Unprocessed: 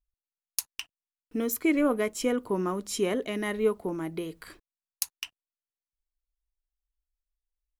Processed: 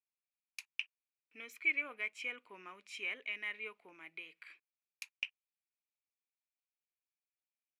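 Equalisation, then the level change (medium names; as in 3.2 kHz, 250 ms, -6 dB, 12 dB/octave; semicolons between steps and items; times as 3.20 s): band-pass filter 2.4 kHz, Q 8.5; +6.0 dB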